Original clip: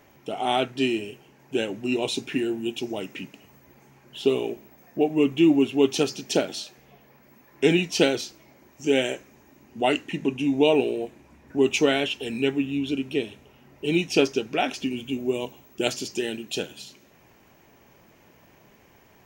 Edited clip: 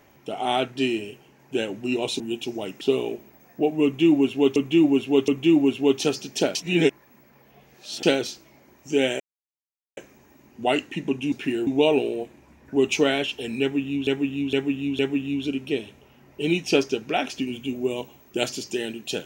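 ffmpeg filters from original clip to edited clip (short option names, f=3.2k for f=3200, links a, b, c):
-filter_complex "[0:a]asplit=13[a][b][c][d][e][f][g][h][i][j][k][l][m];[a]atrim=end=2.202[n];[b]atrim=start=2.548:end=3.162[o];[c]atrim=start=4.188:end=5.942[p];[d]atrim=start=5.218:end=5.942[q];[e]atrim=start=5.218:end=6.492[r];[f]atrim=start=6.488:end=7.972,asetpts=PTS-STARTPTS,areverse[s];[g]atrim=start=7.968:end=9.14,asetpts=PTS-STARTPTS,afade=t=out:st=1.168:d=0.004:c=hsin,apad=pad_dur=0.77[t];[h]atrim=start=9.14:end=10.492,asetpts=PTS-STARTPTS,afade=t=in:d=0.004:c=hsin[u];[i]atrim=start=2.198:end=2.552[v];[j]atrim=start=10.488:end=12.892[w];[k]atrim=start=12.428:end=12.892[x];[l]atrim=start=12.428:end=12.892[y];[m]atrim=start=12.428[z];[n][o]acrossfade=d=0.004:c1=hsin:c2=hsin[aa];[aa][p]acrossfade=d=0.004:c1=hsin:c2=hsin[ab];[ab][q]acrossfade=d=0.004:c1=hsin:c2=hsin[ac];[ac][r]acrossfade=d=0.004:c1=hsin:c2=hsin[ad];[ad][s]acrossfade=d=0.004:c1=hsin:c2=hsin[ae];[t][u]concat=n=2:v=0:a=1[af];[ae][af]acrossfade=d=0.004:c1=hsin:c2=hsin[ag];[ag][v]acrossfade=d=0.004:c1=hsin:c2=hsin[ah];[ah][w]acrossfade=d=0.004:c1=hsin:c2=hsin[ai];[ai][x]acrossfade=d=0.004:c1=hsin:c2=hsin[aj];[aj][y]acrossfade=d=0.004:c1=hsin:c2=hsin[ak];[ak][z]acrossfade=d=0.004:c1=hsin:c2=hsin"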